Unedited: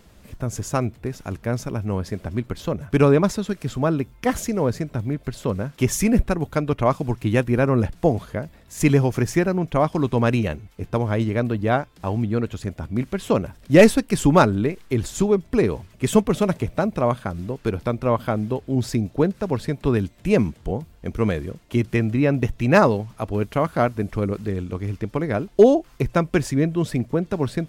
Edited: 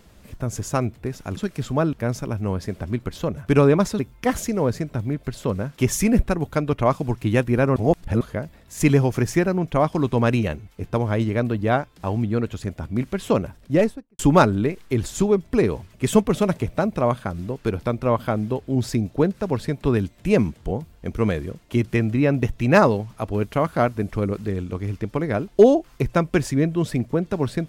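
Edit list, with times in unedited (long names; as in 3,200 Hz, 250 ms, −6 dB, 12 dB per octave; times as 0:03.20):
0:03.43–0:03.99: move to 0:01.37
0:07.76–0:08.21: reverse
0:13.38–0:14.19: fade out and dull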